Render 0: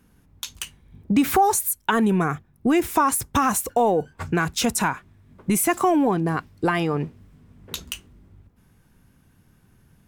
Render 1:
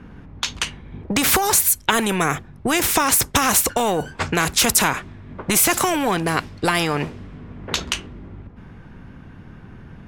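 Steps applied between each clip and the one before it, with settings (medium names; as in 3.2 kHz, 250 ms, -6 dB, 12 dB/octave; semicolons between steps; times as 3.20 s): level-controlled noise filter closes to 2.3 kHz, open at -20 dBFS; spectrum-flattening compressor 2:1; trim +5.5 dB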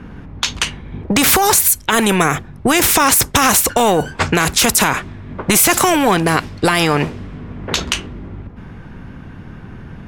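loudness maximiser +8 dB; trim -1 dB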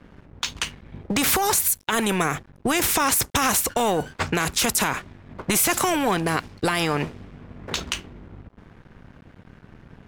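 crossover distortion -36 dBFS; trim -8 dB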